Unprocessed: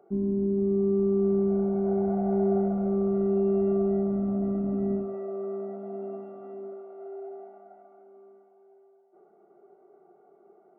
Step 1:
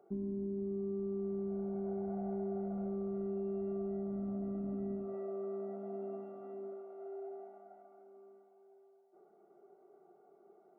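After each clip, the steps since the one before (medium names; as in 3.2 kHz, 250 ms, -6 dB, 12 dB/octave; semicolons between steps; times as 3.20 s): compression 4:1, threshold -31 dBFS, peak gain reduction 9 dB; trim -5.5 dB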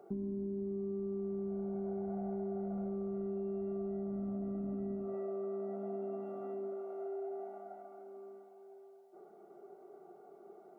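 compression 2.5:1, threshold -47 dBFS, peak gain reduction 8 dB; trim +7.5 dB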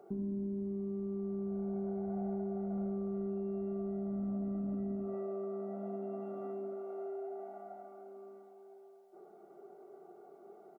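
delay 80 ms -9.5 dB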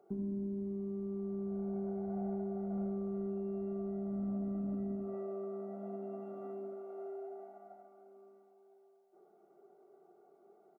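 upward expansion 1.5:1, over -52 dBFS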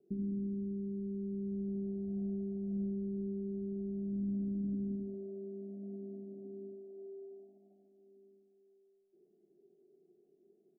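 inverse Chebyshev low-pass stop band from 1.6 kHz, stop band 70 dB; trim +1.5 dB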